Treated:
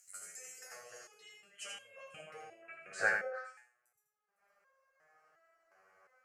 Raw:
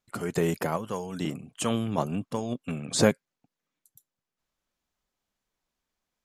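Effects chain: in parallel at +1 dB: upward compressor, threshold -28 dBFS; on the sum: static phaser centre 970 Hz, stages 6; on a send: repeats whose band climbs or falls 101 ms, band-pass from 190 Hz, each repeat 1.4 oct, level -1 dB; on the sum: band-pass sweep 7.4 kHz -> 1 kHz, 0.09–3.82 s; thinning echo 81 ms, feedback 26%, high-pass 420 Hz, level -4 dB; resonator arpeggio 2.8 Hz 95–540 Hz; trim +7 dB

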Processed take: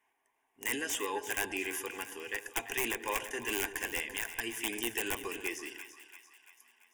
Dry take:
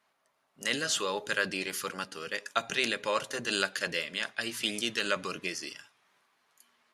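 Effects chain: integer overflow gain 19.5 dB; static phaser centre 870 Hz, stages 8; two-band feedback delay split 890 Hz, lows 130 ms, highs 340 ms, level -11.5 dB

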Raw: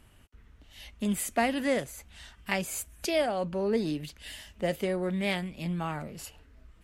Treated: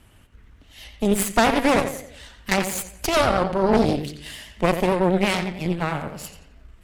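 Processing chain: filtered feedback delay 88 ms, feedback 47%, low-pass 5 kHz, level -7 dB; vibrato 9 Hz 69 cents; Chebyshev shaper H 6 -9 dB, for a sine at -11.5 dBFS; trim +5 dB

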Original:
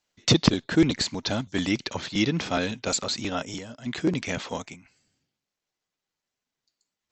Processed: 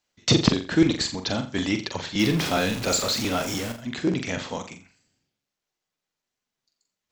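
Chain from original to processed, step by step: 2.19–3.72 s: jump at every zero crossing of -28 dBFS; flutter echo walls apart 7.4 m, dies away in 0.35 s

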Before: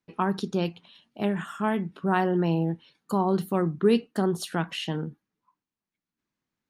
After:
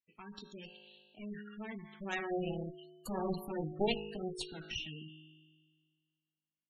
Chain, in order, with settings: Doppler pass-by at 3.00 s, 6 m/s, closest 5 m; resonant high shelf 1.6 kHz +9.5 dB, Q 1.5; feedback comb 52 Hz, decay 1.8 s, harmonics all, mix 80%; Chebyshev shaper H 2 -38 dB, 3 -15 dB, 4 -12 dB, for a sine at -21 dBFS; spectral gate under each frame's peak -15 dB strong; trim +7 dB

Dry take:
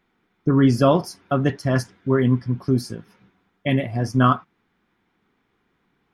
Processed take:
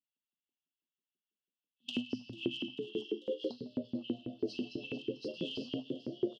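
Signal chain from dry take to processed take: reverse the whole clip; waveshaping leveller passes 1; low-pass 3.9 kHz 24 dB/octave; tape speed -4%; simulated room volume 500 m³, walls mixed, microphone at 1.8 m; in parallel at -7.5 dB: saturation -14.5 dBFS, distortion -7 dB; on the sum: gate -17 dBFS, range -20 dB; brick-wall FIR band-stop 290–2600 Hz; on a send: frequency-shifting echo 443 ms, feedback 48%, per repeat +91 Hz, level -13 dB; on the sum: compression 2.5:1, threshold -22 dBFS, peak gain reduction 12.5 dB; LFO high-pass saw up 6.1 Hz 370–2500 Hz; trim -5.5 dB

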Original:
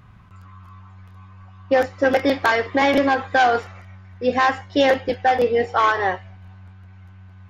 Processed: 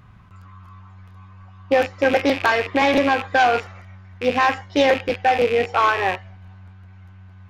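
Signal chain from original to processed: rattle on loud lows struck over -37 dBFS, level -16 dBFS; loudspeaker Doppler distortion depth 0.11 ms

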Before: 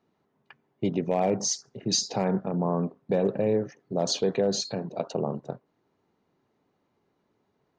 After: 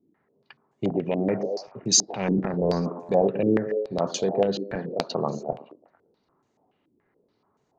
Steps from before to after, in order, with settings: 2.05–3.11 s: transient shaper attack -8 dB, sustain +10 dB; on a send: repeats whose band climbs or falls 112 ms, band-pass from 300 Hz, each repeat 0.7 oct, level -9 dB; on the sum: crackling interface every 0.77 s, samples 128, repeat, from 0.90 s; step-sequenced low-pass 7 Hz 310–7100 Hz

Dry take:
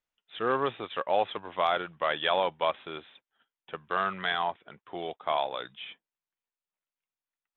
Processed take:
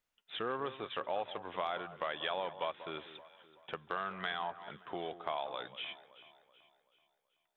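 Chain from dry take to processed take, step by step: compression 2.5:1, threshold -43 dBFS, peak gain reduction 15 dB; echo whose repeats swap between lows and highs 190 ms, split 1.5 kHz, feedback 65%, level -13 dB; trim +3 dB

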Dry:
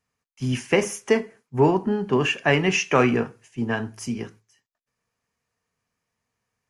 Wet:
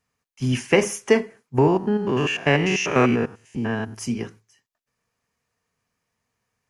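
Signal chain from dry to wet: 1.58–3.96 s: spectrogram pixelated in time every 100 ms; trim +2.5 dB

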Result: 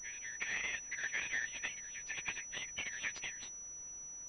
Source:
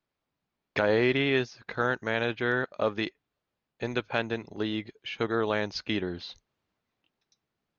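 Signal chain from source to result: local Wiener filter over 9 samples; steep high-pass 1.8 kHz 96 dB/octave; in parallel at 0 dB: peak limiter -27.5 dBFS, peak gain reduction 11.5 dB; on the sum: compression 16:1, threshold -33 dBFS, peak gain reduction 10 dB; plain phase-vocoder stretch 0.55×; added noise pink -69 dBFS; on a send: reverse echo 1089 ms -10 dB; on the sum: class-D stage that switches slowly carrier 5.9 kHz; trim +5 dB

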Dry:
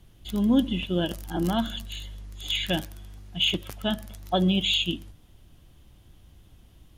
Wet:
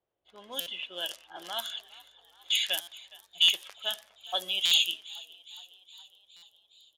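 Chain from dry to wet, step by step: resonant low shelf 350 Hz -11.5 dB, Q 1.5; level-controlled noise filter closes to 500 Hz, open at -23.5 dBFS; differentiator; on a send: frequency-shifting echo 414 ms, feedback 64%, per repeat +54 Hz, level -21 dB; on the sum: buffer glitch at 0.60/2.81/3.42/4.65/6.36 s, samples 256, times 10; trim +8.5 dB

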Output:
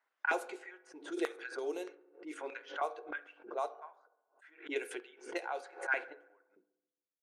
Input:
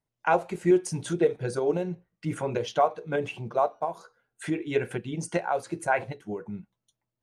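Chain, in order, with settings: LFO high-pass square 1.6 Hz 340–1500 Hz; resonant low shelf 230 Hz -6.5 dB, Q 3; level-controlled noise filter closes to 430 Hz, open at -14.5 dBFS; differentiator; filtered feedback delay 69 ms, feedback 69%, low-pass 2.5 kHz, level -23 dB; reverberation RT60 0.75 s, pre-delay 3 ms, DRR 14 dB; swell ahead of each attack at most 150 dB/s; trim +4.5 dB

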